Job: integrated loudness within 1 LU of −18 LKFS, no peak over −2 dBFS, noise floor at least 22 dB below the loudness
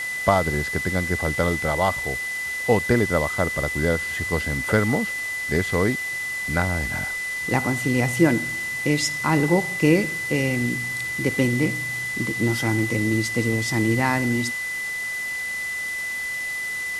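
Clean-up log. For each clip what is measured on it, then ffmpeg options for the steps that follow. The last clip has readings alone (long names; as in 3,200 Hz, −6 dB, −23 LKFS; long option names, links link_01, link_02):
interfering tone 2,000 Hz; level of the tone −26 dBFS; background noise floor −29 dBFS; target noise floor −45 dBFS; integrated loudness −22.5 LKFS; sample peak −3.0 dBFS; target loudness −18.0 LKFS
→ -af "bandreject=frequency=2000:width=30"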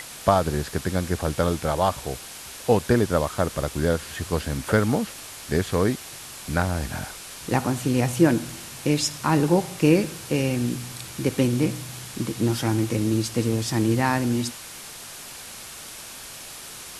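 interfering tone none found; background noise floor −40 dBFS; target noise floor −46 dBFS
→ -af "afftdn=noise_reduction=6:noise_floor=-40"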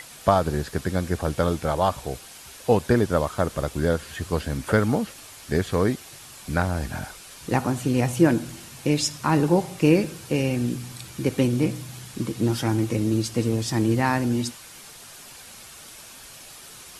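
background noise floor −44 dBFS; target noise floor −47 dBFS
→ -af "afftdn=noise_reduction=6:noise_floor=-44"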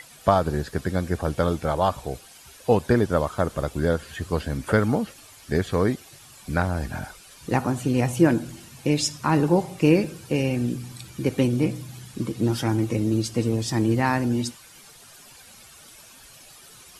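background noise floor −49 dBFS; integrated loudness −24.5 LKFS; sample peak −3.5 dBFS; target loudness −18.0 LKFS
→ -af "volume=6.5dB,alimiter=limit=-2dB:level=0:latency=1"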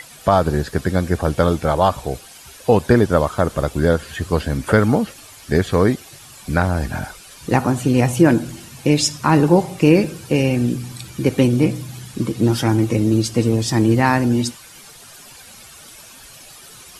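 integrated loudness −18.0 LKFS; sample peak −2.0 dBFS; background noise floor −42 dBFS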